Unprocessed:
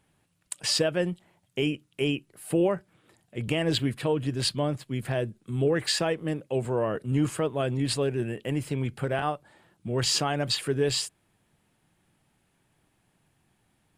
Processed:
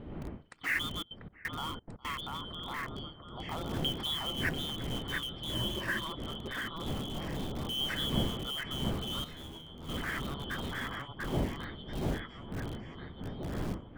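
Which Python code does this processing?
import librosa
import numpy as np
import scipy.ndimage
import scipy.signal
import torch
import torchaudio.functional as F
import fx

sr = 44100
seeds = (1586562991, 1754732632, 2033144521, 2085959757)

p1 = fx.band_shuffle(x, sr, order='2413')
p2 = fx.dmg_wind(p1, sr, seeds[0], corner_hz=260.0, level_db=-35.0)
p3 = fx.filter_lfo_lowpass(p2, sr, shape='saw_down', hz=0.26, low_hz=830.0, high_hz=2700.0, q=1.6)
p4 = p3 + fx.echo_alternate(p3, sr, ms=691, hz=2300.0, feedback_pct=63, wet_db=-2.5, dry=0)
p5 = fx.step_gate(p4, sr, bpm=176, pattern='x.xx..xxxx.', floor_db=-24.0, edge_ms=4.5, at=(0.99, 2.06), fade=0.02)
p6 = fx.ripple_eq(p5, sr, per_octave=1.3, db=10, at=(5.53, 6.08))
p7 = (np.mod(10.0 ** (26.5 / 20.0) * p6 + 1.0, 2.0) - 1.0) / 10.0 ** (26.5 / 20.0)
p8 = p6 + (p7 * librosa.db_to_amplitude(-9.0))
p9 = fx.dynamic_eq(p8, sr, hz=5200.0, q=1.4, threshold_db=-44.0, ratio=4.0, max_db=-5)
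p10 = fx.comb_fb(p9, sr, f0_hz=81.0, decay_s=0.4, harmonics='all', damping=0.0, mix_pct=80, at=(9.24, 9.89))
y = p10 * librosa.db_to_amplitude(-7.0)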